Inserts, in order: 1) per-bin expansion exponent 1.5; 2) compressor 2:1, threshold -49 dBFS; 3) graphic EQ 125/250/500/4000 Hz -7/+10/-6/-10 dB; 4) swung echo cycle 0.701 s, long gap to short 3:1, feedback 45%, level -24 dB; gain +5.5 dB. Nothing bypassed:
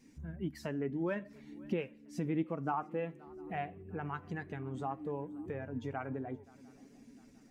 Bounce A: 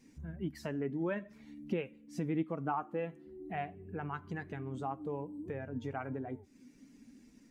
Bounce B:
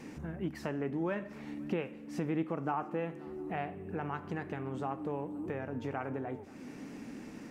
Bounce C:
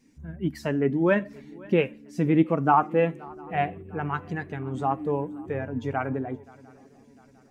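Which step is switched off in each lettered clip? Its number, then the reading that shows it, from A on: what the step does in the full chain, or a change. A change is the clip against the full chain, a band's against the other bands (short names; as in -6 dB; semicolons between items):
4, echo-to-direct -21.5 dB to none; 1, momentary loudness spread change -10 LU; 2, mean gain reduction 10.0 dB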